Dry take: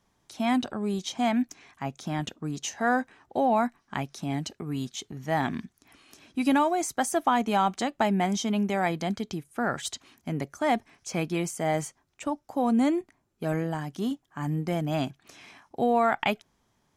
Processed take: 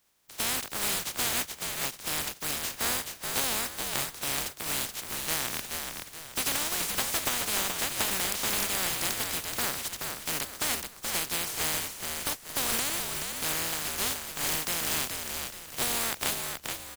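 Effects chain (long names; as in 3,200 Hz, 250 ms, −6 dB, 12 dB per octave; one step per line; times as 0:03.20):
compressing power law on the bin magnitudes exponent 0.13
downward compressor, threshold −26 dBFS, peak gain reduction 8 dB
echo with shifted repeats 427 ms, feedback 38%, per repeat −78 Hz, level −5 dB
every ending faded ahead of time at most 400 dB per second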